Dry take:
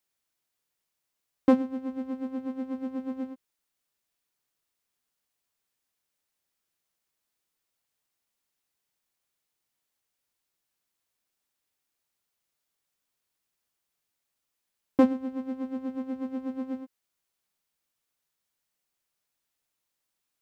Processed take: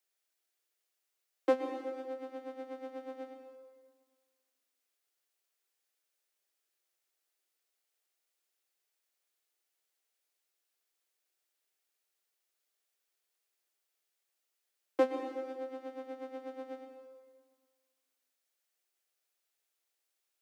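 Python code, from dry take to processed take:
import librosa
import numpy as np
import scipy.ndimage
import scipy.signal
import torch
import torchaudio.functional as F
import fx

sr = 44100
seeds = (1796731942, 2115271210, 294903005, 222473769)

y = scipy.signal.sosfilt(scipy.signal.butter(8, 330.0, 'highpass', fs=sr, output='sos'), x)
y = fx.peak_eq(y, sr, hz=1000.0, db=-5.5, octaves=0.43)
y = fx.rev_plate(y, sr, seeds[0], rt60_s=1.6, hf_ratio=0.95, predelay_ms=110, drr_db=6.0)
y = F.gain(torch.from_numpy(y), -2.0).numpy()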